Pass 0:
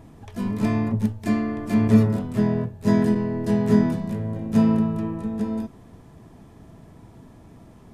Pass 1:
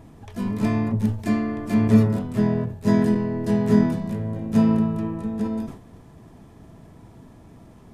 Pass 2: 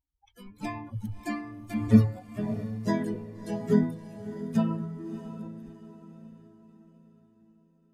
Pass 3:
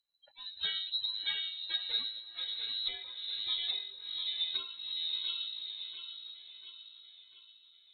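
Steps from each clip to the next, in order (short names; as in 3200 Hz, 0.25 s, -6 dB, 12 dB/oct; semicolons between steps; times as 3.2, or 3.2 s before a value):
sustainer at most 110 dB/s
per-bin expansion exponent 3; on a send: diffused feedback echo 0.641 s, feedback 44%, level -12 dB
split-band echo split 380 Hz, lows 0.11 s, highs 0.693 s, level -8.5 dB; inverted band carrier 4000 Hz; treble ducked by the level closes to 1400 Hz, closed at -24 dBFS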